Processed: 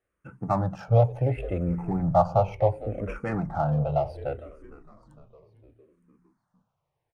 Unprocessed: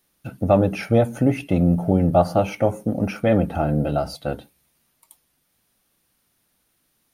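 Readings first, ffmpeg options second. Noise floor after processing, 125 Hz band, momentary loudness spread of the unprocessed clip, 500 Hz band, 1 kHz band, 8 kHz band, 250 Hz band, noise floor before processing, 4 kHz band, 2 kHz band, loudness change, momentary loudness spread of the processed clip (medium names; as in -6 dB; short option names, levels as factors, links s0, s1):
-81 dBFS, -3.0 dB, 11 LU, -5.5 dB, -1.5 dB, under -15 dB, -10.5 dB, -69 dBFS, under -10 dB, -9.0 dB, -5.5 dB, 11 LU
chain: -filter_complex "[0:a]equalizer=f=125:t=o:w=1:g=10,equalizer=f=250:t=o:w=1:g=-11,equalizer=f=500:t=o:w=1:g=3,equalizer=f=1000:t=o:w=1:g=8,equalizer=f=4000:t=o:w=1:g=-9,equalizer=f=8000:t=o:w=1:g=11,adynamicsmooth=sensitivity=2:basefreq=2400,asplit=2[s0][s1];[s1]asplit=5[s2][s3][s4][s5][s6];[s2]adelay=457,afreqshift=-65,volume=0.15[s7];[s3]adelay=914,afreqshift=-130,volume=0.0794[s8];[s4]adelay=1371,afreqshift=-195,volume=0.0422[s9];[s5]adelay=1828,afreqshift=-260,volume=0.0224[s10];[s6]adelay=2285,afreqshift=-325,volume=0.0117[s11];[s7][s8][s9][s10][s11]amix=inputs=5:normalize=0[s12];[s0][s12]amix=inputs=2:normalize=0,asplit=2[s13][s14];[s14]afreqshift=-0.69[s15];[s13][s15]amix=inputs=2:normalize=1,volume=0.531"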